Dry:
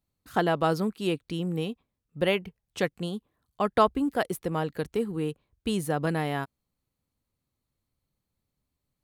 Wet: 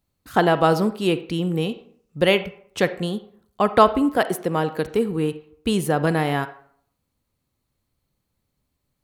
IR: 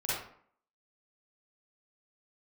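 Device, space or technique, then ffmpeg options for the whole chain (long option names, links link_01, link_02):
filtered reverb send: -filter_complex "[0:a]asplit=2[link_01][link_02];[link_02]highpass=210,lowpass=4500[link_03];[1:a]atrim=start_sample=2205[link_04];[link_03][link_04]afir=irnorm=-1:irlink=0,volume=-17.5dB[link_05];[link_01][link_05]amix=inputs=2:normalize=0,asettb=1/sr,asplit=3[link_06][link_07][link_08];[link_06]atrim=end=1.694[link_09];[link_07]atrim=start=1.69:end=2.43,asetpts=PTS-STARTPTS,afade=type=in:duration=0.004:curve=qsin,afade=type=out:start_time=0.736:duration=0.004:curve=qsin,equalizer=frequency=5900:width=1.1:gain=6[link_10];[link_08]atrim=start=2.426[link_11];[link_09][link_10]acrossfade=duration=0.004:curve1=hsin:curve2=qsin[link_12];[link_12][link_11]acrossfade=duration=0.004:curve1=qsin:curve2=hsin,asettb=1/sr,asplit=3[link_13][link_14][link_15];[link_13]atrim=end=4.174[link_16];[link_14]atrim=start=4.17:end=4.85,asetpts=PTS-STARTPTS,afade=type=in:duration=0.004:curve=qsin,afade=type=out:start_time=0.676:duration=0.004:curve=qsin,highpass=140[link_17];[link_15]atrim=start=4.846[link_18];[link_16][link_17]acrossfade=duration=0.004:curve1=hsin:curve2=qsin[link_19];[link_19][link_18]acrossfade=duration=0.004:curve1=qsin:curve2=hsin,volume=6.5dB"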